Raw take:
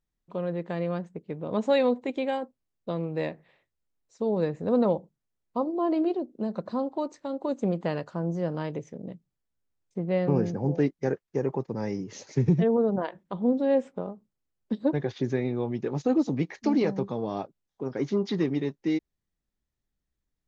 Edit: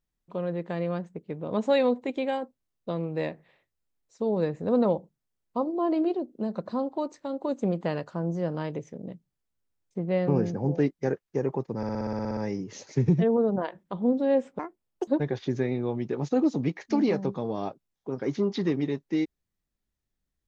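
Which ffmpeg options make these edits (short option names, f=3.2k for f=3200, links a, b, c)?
-filter_complex "[0:a]asplit=13[a][b][c][d][e][f][g][h][i][j][k][l][m];[a]atrim=end=11.832[n];[b]atrim=start=11.768:end=11.832[o];[c]atrim=start=11.768:end=11.832[p];[d]atrim=start=11.768:end=11.832[q];[e]atrim=start=11.768:end=11.832[r];[f]atrim=start=11.768:end=11.832[s];[g]atrim=start=11.768:end=11.832[t];[h]atrim=start=11.768:end=11.832[u];[i]atrim=start=11.768:end=11.832[v];[j]atrim=start=11.768:end=11.832[w];[k]atrim=start=11.768:end=13.994[x];[l]atrim=start=13.99:end=14.81,asetpts=PTS-STARTPTS,asetrate=74529,aresample=44100[y];[m]atrim=start=14.806[z];[n][o]acrossfade=d=0.004:c1=hsin:c2=hsin[aa];[aa][p]acrossfade=d=0.004:c1=hsin:c2=hsin[ab];[ab][q]acrossfade=d=0.004:c1=hsin:c2=hsin[ac];[ac][r]acrossfade=d=0.004:c1=hsin:c2=hsin[ad];[ad][s]acrossfade=d=0.004:c1=hsin:c2=hsin[ae];[ae][t]acrossfade=d=0.004:c1=hsin:c2=hsin[af];[af][u]acrossfade=d=0.004:c1=hsin:c2=hsin[ag];[ag][v]acrossfade=d=0.004:c1=hsin:c2=hsin[ah];[ah][w]acrossfade=d=0.004:c1=hsin:c2=hsin[ai];[ai][x]acrossfade=d=0.004:c1=hsin:c2=hsin[aj];[aj][y]acrossfade=d=0.004:c1=hsin:c2=hsin[ak];[ak][z]acrossfade=d=0.004:c1=hsin:c2=hsin"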